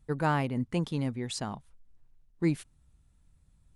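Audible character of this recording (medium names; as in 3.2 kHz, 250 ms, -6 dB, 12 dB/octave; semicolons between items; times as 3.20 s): noise floor -65 dBFS; spectral tilt -6.0 dB/octave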